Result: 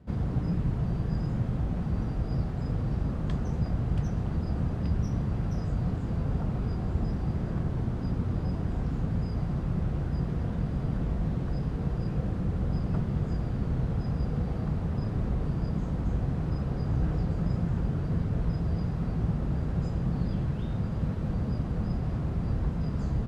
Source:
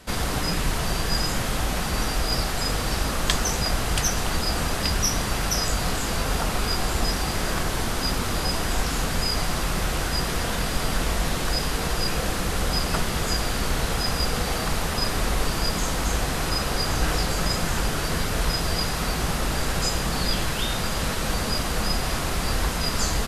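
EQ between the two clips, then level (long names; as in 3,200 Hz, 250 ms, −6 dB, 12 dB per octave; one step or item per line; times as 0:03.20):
resonant band-pass 120 Hz, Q 1.3
+4.5 dB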